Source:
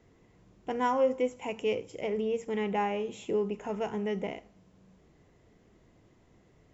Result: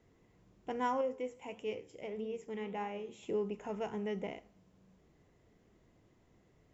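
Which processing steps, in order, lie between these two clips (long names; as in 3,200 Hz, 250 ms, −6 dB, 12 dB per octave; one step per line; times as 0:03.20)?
0:01.01–0:03.23: flanger 1.6 Hz, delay 8.2 ms, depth 6.8 ms, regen +78%
level −5.5 dB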